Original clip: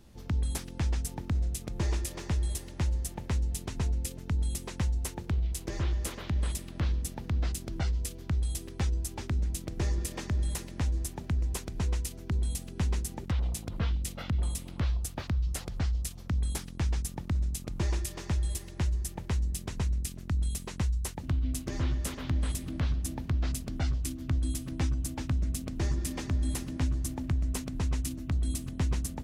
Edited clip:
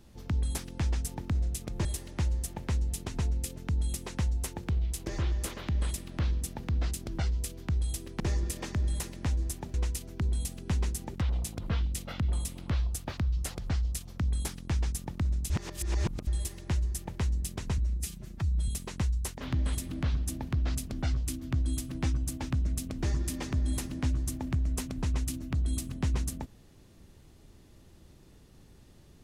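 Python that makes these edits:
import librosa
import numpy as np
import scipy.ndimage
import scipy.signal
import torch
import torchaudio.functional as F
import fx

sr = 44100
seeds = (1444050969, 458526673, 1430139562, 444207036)

y = fx.edit(x, sr, fx.cut(start_s=1.85, length_s=0.61),
    fx.cut(start_s=8.81, length_s=0.94),
    fx.cut(start_s=11.29, length_s=0.55),
    fx.reverse_span(start_s=17.6, length_s=0.77),
    fx.stretch_span(start_s=19.88, length_s=0.6, factor=1.5),
    fx.cut(start_s=21.18, length_s=0.97), tone=tone)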